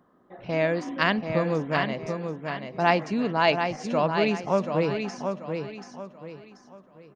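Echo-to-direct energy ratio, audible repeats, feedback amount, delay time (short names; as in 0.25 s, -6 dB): -5.5 dB, 4, 33%, 0.734 s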